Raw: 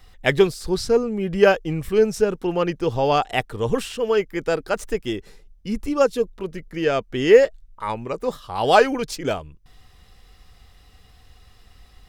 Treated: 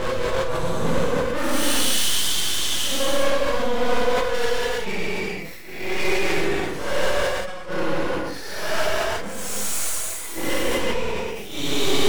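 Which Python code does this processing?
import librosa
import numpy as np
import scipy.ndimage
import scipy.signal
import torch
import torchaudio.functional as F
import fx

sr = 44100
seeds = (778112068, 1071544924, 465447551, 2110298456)

p1 = fx.pitch_glide(x, sr, semitones=5.0, runs='starting unshifted')
p2 = fx.highpass(p1, sr, hz=390.0, slope=6)
p3 = fx.rider(p2, sr, range_db=4, speed_s=0.5)
p4 = p2 + (p3 * 10.0 ** (-2.0 / 20.0))
p5 = fx.paulstretch(p4, sr, seeds[0], factor=8.0, window_s=0.05, from_s=3.61)
p6 = np.maximum(p5, 0.0)
p7 = fx.gate_flip(p6, sr, shuts_db=-9.0, range_db=-32)
p8 = 10.0 ** (-25.0 / 20.0) * np.tanh(p7 / 10.0 ** (-25.0 / 20.0))
p9 = fx.rev_gated(p8, sr, seeds[1], gate_ms=420, shape='flat', drr_db=-7.0)
p10 = fx.sustainer(p9, sr, db_per_s=35.0)
y = p10 * 10.0 ** (5.0 / 20.0)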